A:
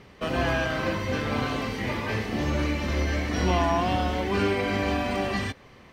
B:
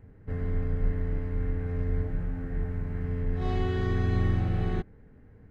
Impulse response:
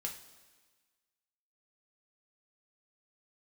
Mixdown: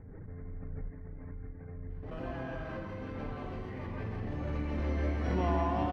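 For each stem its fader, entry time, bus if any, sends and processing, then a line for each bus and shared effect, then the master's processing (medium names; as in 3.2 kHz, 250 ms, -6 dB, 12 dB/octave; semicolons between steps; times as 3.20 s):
4.25 s -14.5 dB -> 4.91 s -7.5 dB, 1.90 s, no send, echo send -4.5 dB, treble shelf 2.9 kHz -7 dB
-13.5 dB, 0.00 s, send -11.5 dB, no echo send, elliptic low-pass 2.3 kHz; reverb removal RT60 1.3 s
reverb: on, pre-delay 3 ms
echo: delay 162 ms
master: treble shelf 2.5 kHz -12 dB; swell ahead of each attack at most 22 dB/s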